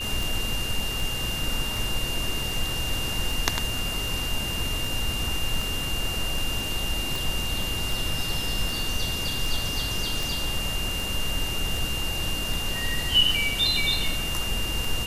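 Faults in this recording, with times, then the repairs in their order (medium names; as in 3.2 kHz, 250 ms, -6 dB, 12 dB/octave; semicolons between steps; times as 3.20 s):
tick 78 rpm
whine 2.8 kHz -30 dBFS
7.16 s: pop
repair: de-click; band-stop 2.8 kHz, Q 30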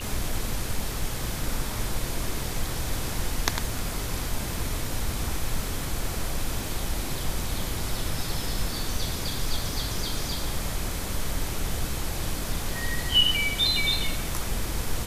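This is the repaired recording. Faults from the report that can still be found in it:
nothing left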